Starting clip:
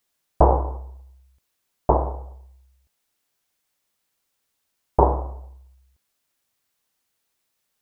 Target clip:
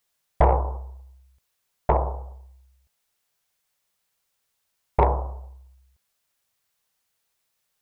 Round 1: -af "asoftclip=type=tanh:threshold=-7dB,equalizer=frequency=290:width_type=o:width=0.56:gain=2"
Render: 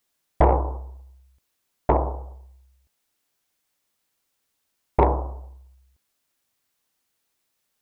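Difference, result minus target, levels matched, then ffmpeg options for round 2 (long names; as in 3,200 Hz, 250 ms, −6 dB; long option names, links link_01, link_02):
250 Hz band +5.0 dB
-af "asoftclip=type=tanh:threshold=-7dB,equalizer=frequency=290:width_type=o:width=0.56:gain=-9.5"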